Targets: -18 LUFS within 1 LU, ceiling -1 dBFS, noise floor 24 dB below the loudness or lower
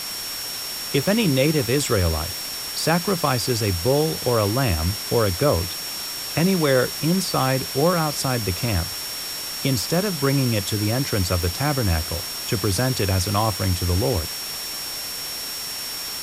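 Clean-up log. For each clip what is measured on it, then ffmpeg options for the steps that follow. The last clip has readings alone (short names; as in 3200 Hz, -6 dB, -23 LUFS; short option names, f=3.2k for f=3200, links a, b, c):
steady tone 5500 Hz; tone level -31 dBFS; noise floor -30 dBFS; noise floor target -46 dBFS; loudness -22.0 LUFS; peak -6.5 dBFS; loudness target -18.0 LUFS
-> -af "bandreject=f=5.5k:w=30"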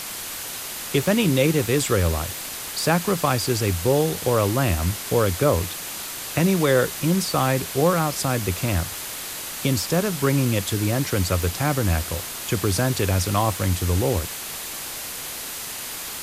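steady tone none; noise floor -33 dBFS; noise floor target -47 dBFS
-> -af "afftdn=nr=14:nf=-33"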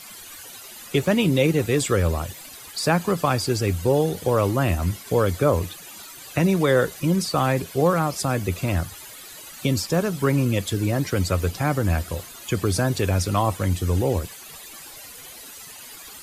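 noise floor -42 dBFS; noise floor target -47 dBFS
-> -af "afftdn=nr=6:nf=-42"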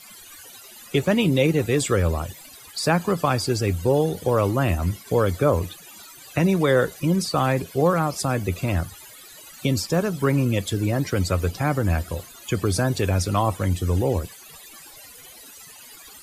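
noise floor -45 dBFS; noise floor target -47 dBFS
-> -af "afftdn=nr=6:nf=-45"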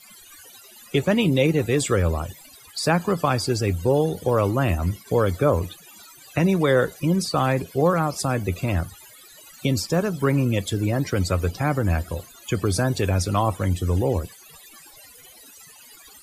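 noise floor -48 dBFS; loudness -23.0 LUFS; peak -7.0 dBFS; loudness target -18.0 LUFS
-> -af "volume=5dB"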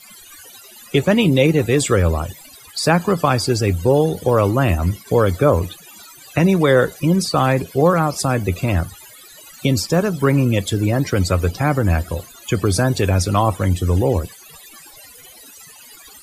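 loudness -18.0 LUFS; peak -2.0 dBFS; noise floor -43 dBFS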